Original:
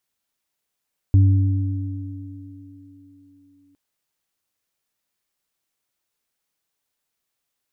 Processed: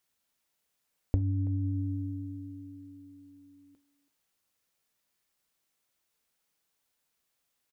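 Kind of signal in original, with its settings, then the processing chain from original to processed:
sine partials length 2.61 s, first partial 97.3 Hz, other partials 284 Hz, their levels -14.5 dB, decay 2.66 s, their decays 4.98 s, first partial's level -9 dB
compressor 6:1, threshold -24 dBFS; speakerphone echo 0.33 s, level -16 dB; non-linear reverb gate 0.1 s falling, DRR 12 dB

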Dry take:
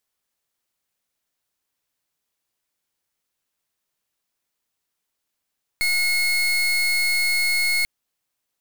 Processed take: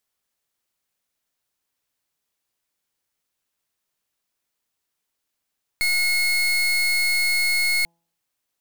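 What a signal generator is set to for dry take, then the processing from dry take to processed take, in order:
pulse 2170 Hz, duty 31% -20.5 dBFS 2.04 s
de-hum 168.5 Hz, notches 6

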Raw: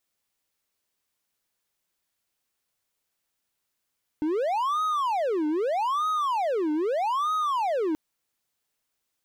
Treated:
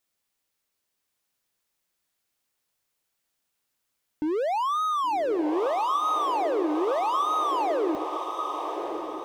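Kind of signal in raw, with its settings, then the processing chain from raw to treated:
siren wail 301–1260 Hz 0.8/s triangle -21 dBFS 3.73 s
notches 50/100 Hz; diffused feedback echo 1.112 s, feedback 50%, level -6 dB

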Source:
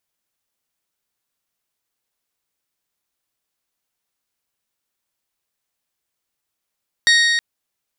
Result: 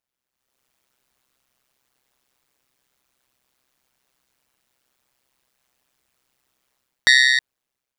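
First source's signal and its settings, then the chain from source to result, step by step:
metal hit bell, length 0.32 s, lowest mode 1870 Hz, modes 6, decay 3.01 s, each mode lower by 3.5 dB, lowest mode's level -11.5 dB
high shelf 4000 Hz -6 dB; AGC gain up to 16 dB; AM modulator 130 Hz, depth 90%

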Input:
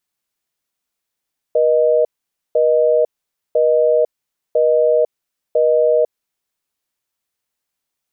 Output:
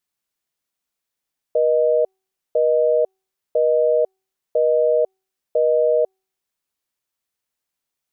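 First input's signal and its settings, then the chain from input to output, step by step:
call progress tone busy tone, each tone -13.5 dBFS 4.97 s
resonator 380 Hz, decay 0.54 s, mix 30%

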